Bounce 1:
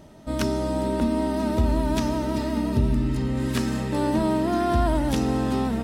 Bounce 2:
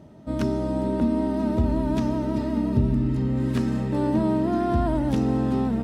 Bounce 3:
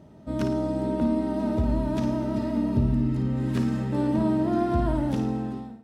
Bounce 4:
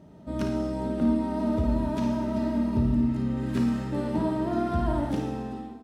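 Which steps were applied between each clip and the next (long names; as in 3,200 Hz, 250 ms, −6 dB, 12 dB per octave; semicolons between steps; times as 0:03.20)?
high-pass filter 100 Hz 12 dB per octave; spectral tilt −2.5 dB per octave; level −3.5 dB
fade-out on the ending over 0.82 s; flutter between parallel walls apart 9.4 metres, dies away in 0.43 s; level −2.5 dB
on a send at −5 dB: double-tracking delay 28 ms −2.5 dB + convolution reverb, pre-delay 3 ms; on the sum: level −2 dB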